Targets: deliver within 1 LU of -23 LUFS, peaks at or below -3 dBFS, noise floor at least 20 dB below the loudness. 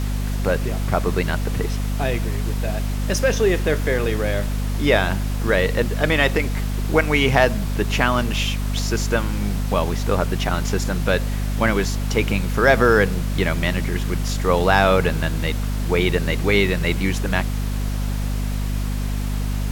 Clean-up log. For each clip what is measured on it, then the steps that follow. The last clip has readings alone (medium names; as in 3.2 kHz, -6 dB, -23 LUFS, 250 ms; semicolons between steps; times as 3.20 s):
hum 50 Hz; highest harmonic 250 Hz; hum level -20 dBFS; noise floor -24 dBFS; noise floor target -41 dBFS; loudness -21.0 LUFS; peak level -2.0 dBFS; loudness target -23.0 LUFS
-> de-hum 50 Hz, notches 5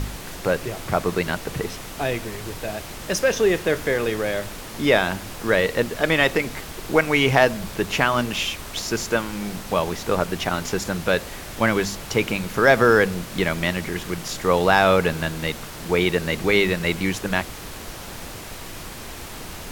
hum not found; noise floor -36 dBFS; noise floor target -42 dBFS
-> noise print and reduce 6 dB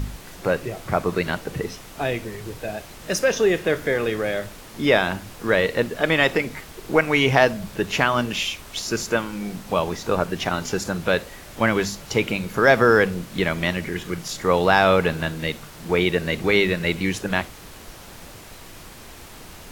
noise floor -42 dBFS; loudness -22.0 LUFS; peak level -3.0 dBFS; loudness target -23.0 LUFS
-> trim -1 dB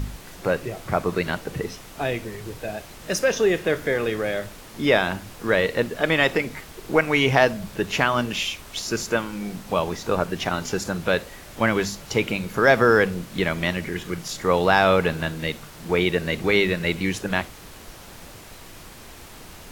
loudness -23.0 LUFS; peak level -4.0 dBFS; noise floor -43 dBFS